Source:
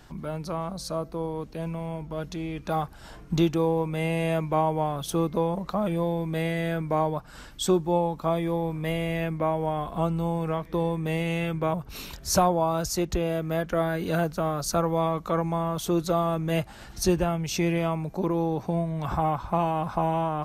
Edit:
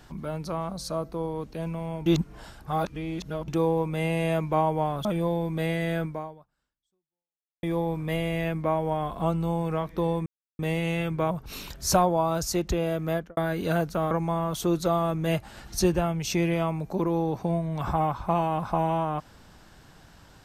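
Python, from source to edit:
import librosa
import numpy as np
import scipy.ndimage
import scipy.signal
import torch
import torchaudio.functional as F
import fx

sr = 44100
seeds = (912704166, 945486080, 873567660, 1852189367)

y = fx.studio_fade_out(x, sr, start_s=13.55, length_s=0.25)
y = fx.edit(y, sr, fx.reverse_span(start_s=2.06, length_s=1.42),
    fx.cut(start_s=5.05, length_s=0.76),
    fx.fade_out_span(start_s=6.8, length_s=1.59, curve='exp'),
    fx.insert_silence(at_s=11.02, length_s=0.33),
    fx.cut(start_s=14.54, length_s=0.81), tone=tone)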